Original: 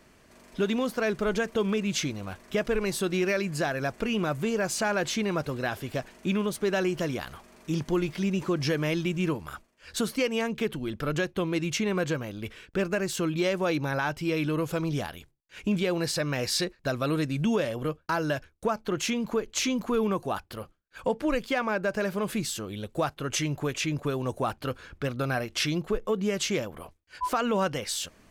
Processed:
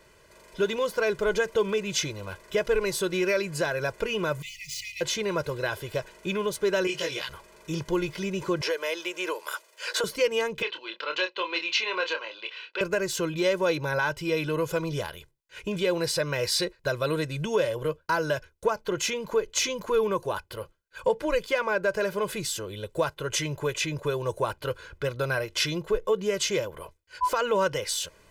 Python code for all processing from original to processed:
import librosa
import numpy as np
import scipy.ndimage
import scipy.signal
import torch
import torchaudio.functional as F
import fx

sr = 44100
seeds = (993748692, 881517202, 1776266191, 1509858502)

y = fx.chain(x, sr, fx.median_filter(points=5),
    fx.brickwall_bandstop(low_hz=150.0, high_hz=1900.0),
    fx.hum_notches(base_hz=60, count=7), at=(4.42, 5.01))
y = fx.chain(y, sr, fx.weighting(curve='D'),
    fx.detune_double(cents=17), at=(6.87, 7.29))
y = fx.chain(y, sr, fx.highpass(hz=430.0, slope=24),
    fx.band_squash(depth_pct=100), at=(8.61, 10.04))
y = fx.chain(y, sr, fx.cabinet(low_hz=430.0, low_slope=24, high_hz=4900.0, hz=(440.0, 630.0, 1000.0, 2700.0, 4200.0), db=(-8, -6, 4, 10, 9)),
    fx.doubler(ms=27.0, db=-7.0), at=(10.62, 12.81))
y = fx.low_shelf(y, sr, hz=150.0, db=-5.0)
y = y + 0.76 * np.pad(y, (int(2.0 * sr / 1000.0), 0))[:len(y)]